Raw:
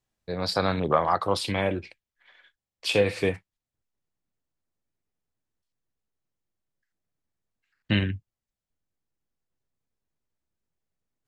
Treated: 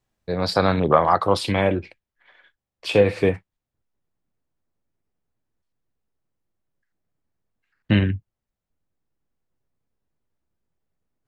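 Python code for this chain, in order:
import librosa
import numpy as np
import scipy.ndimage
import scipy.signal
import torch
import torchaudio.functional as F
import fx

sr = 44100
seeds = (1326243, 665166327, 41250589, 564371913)

y = fx.high_shelf(x, sr, hz=2500.0, db=fx.steps((0.0, -5.5), (1.74, -11.5)))
y = F.gain(torch.from_numpy(y), 6.5).numpy()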